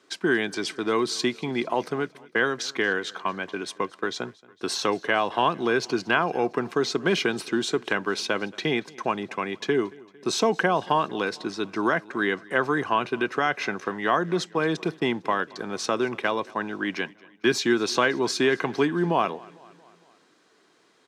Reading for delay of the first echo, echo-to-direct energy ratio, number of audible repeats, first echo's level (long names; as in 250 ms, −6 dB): 227 ms, −22.0 dB, 3, −23.5 dB